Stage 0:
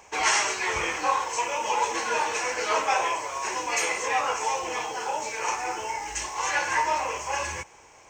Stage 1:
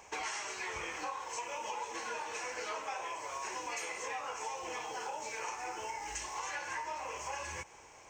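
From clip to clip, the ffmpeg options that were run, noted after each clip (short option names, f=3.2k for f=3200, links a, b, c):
-af "acompressor=threshold=-34dB:ratio=6,volume=-3.5dB"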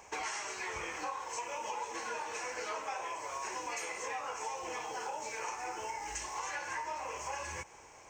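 -af "equalizer=f=3.3k:w=1.5:g=-3,volume=1dB"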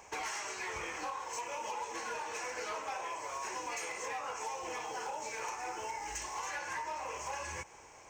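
-af "asoftclip=type=hard:threshold=-33dB"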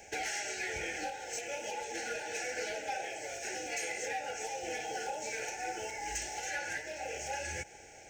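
-af "asuperstop=centerf=1100:order=20:qfactor=2,volume=3.5dB"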